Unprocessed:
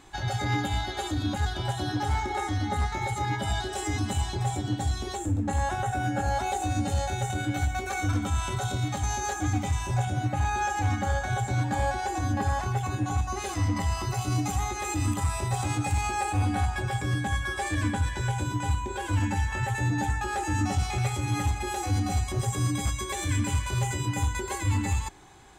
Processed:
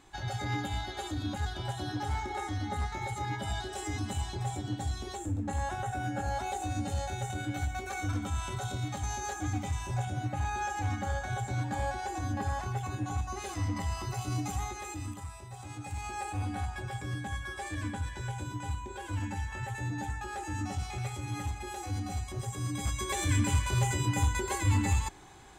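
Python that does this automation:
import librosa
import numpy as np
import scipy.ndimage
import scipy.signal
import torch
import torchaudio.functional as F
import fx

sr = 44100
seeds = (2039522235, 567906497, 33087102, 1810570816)

y = fx.gain(x, sr, db=fx.line((14.63, -6.0), (15.47, -18.0), (16.18, -8.5), (22.62, -8.5), (23.11, -0.5)))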